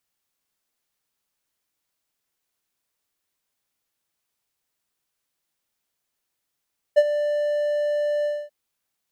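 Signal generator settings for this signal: ADSR triangle 590 Hz, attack 21 ms, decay 47 ms, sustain -11.5 dB, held 1.29 s, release 245 ms -7 dBFS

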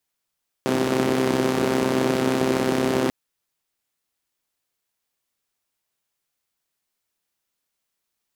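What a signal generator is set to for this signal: four-cylinder engine model, steady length 2.44 s, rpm 3900, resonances 240/340 Hz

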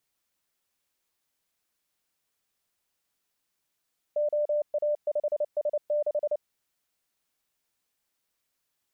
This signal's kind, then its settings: Morse "OA5S6" 29 wpm 594 Hz -23 dBFS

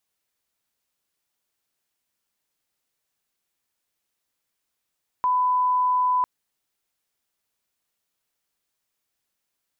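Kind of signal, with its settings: line-up tone -18 dBFS 1.00 s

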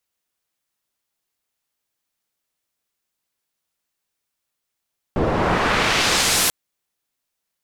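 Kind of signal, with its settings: swept filtered noise white, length 1.34 s lowpass, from 470 Hz, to 13 kHz, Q 0.79, exponential, gain ramp -12.5 dB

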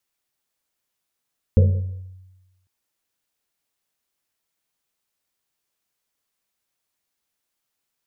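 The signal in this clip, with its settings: Risset drum, pitch 93 Hz, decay 1.16 s, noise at 490 Hz, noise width 130 Hz, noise 15%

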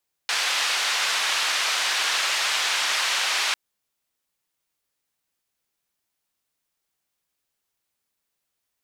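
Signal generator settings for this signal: noise band 1–4.3 kHz, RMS -24 dBFS 3.25 s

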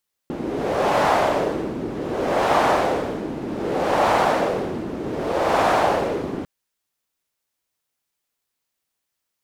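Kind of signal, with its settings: wind-like swept noise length 6.15 s, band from 300 Hz, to 790 Hz, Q 1.8, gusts 4, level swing 11 dB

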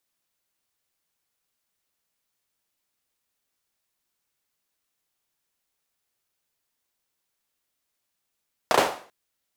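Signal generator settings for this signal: hand clap length 0.39 s, bursts 3, apart 33 ms, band 650 Hz, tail 0.44 s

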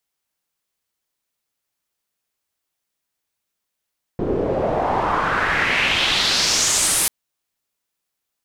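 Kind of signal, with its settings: swept filtered noise white, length 2.89 s lowpass, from 350 Hz, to 11 kHz, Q 2.7, exponential, gain ramp -10.5 dB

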